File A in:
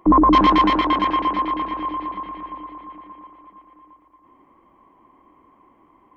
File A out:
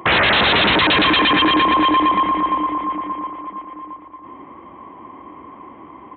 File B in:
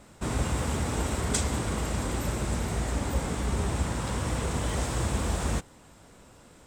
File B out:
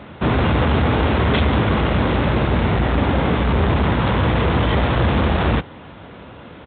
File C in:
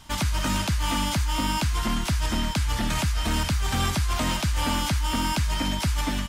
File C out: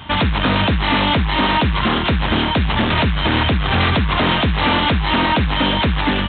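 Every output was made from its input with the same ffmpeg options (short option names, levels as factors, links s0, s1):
-af "aresample=8000,aeval=exprs='0.596*sin(PI/2*8.91*val(0)/0.596)':c=same,aresample=44100,highpass=f=61:w=0.5412,highpass=f=61:w=1.3066,apsyclip=1,volume=0.447"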